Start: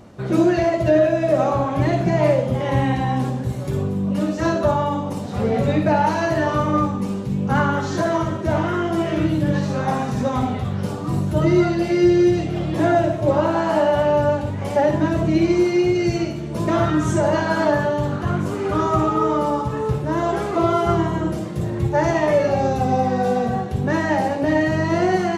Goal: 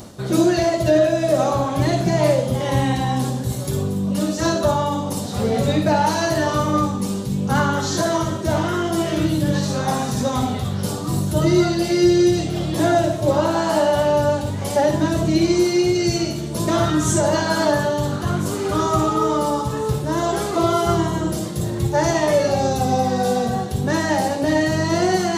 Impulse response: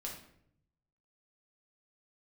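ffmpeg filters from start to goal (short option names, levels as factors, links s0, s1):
-af "areverse,acompressor=mode=upward:threshold=0.0891:ratio=2.5,areverse,aexciter=amount=3.6:drive=4.6:freq=3400"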